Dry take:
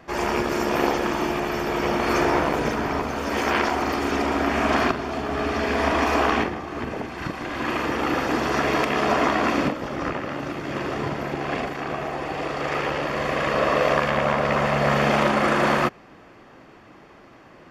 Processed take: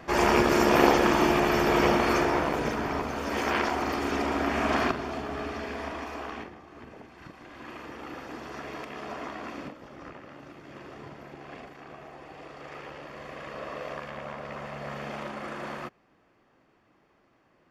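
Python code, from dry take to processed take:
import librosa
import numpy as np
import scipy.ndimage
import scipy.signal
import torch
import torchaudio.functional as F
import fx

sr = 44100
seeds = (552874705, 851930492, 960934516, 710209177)

y = fx.gain(x, sr, db=fx.line((1.82, 2.0), (2.28, -5.0), (5.06, -5.0), (6.14, -17.0)))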